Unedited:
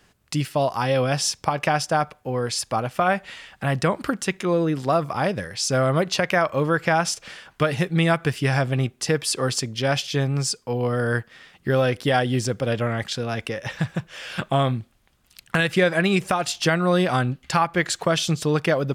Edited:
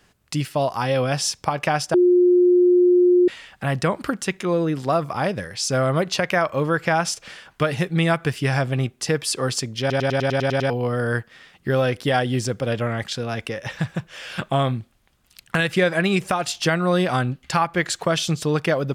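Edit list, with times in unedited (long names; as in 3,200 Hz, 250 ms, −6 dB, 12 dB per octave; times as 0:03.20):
0:01.94–0:03.28: beep over 357 Hz −11.5 dBFS
0:09.80: stutter in place 0.10 s, 9 plays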